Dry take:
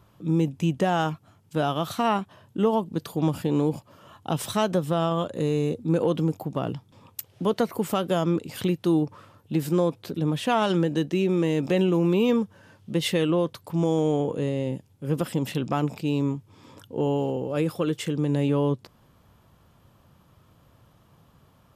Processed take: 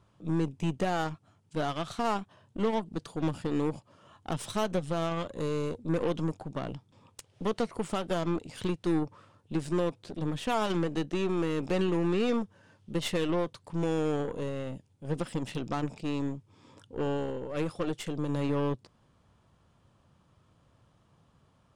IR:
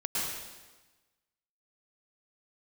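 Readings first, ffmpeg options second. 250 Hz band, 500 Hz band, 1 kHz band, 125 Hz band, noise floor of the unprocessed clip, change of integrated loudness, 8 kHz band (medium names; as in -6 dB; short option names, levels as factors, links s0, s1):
-6.5 dB, -6.5 dB, -6.0 dB, -7.5 dB, -59 dBFS, -6.5 dB, -5.5 dB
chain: -af "aresample=22050,aresample=44100,aeval=exprs='0.282*(cos(1*acos(clip(val(0)/0.282,-1,1)))-cos(1*PI/2))+0.0282*(cos(8*acos(clip(val(0)/0.282,-1,1)))-cos(8*PI/2))':c=same,volume=0.447"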